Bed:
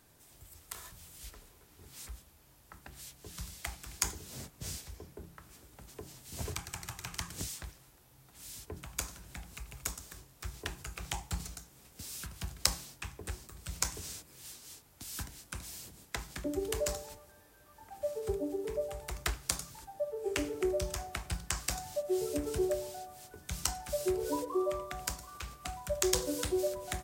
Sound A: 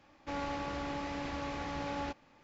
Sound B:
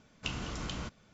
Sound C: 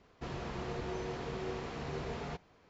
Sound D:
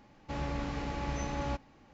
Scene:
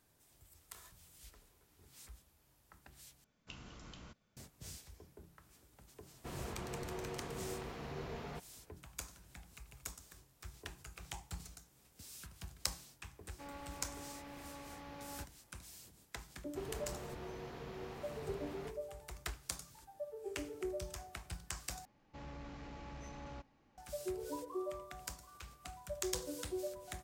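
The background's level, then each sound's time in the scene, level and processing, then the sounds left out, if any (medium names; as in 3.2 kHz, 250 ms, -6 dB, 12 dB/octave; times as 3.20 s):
bed -9 dB
3.24 s: replace with B -15 dB
6.03 s: add C -5 dB
13.12 s: add A -12.5 dB
16.34 s: add C -8 dB
21.85 s: replace with D -11.5 dB + saturation -31.5 dBFS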